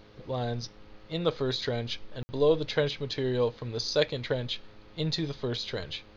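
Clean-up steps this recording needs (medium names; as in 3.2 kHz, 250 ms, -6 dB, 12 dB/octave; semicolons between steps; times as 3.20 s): de-hum 105.4 Hz, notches 5; room tone fill 2.23–2.29 s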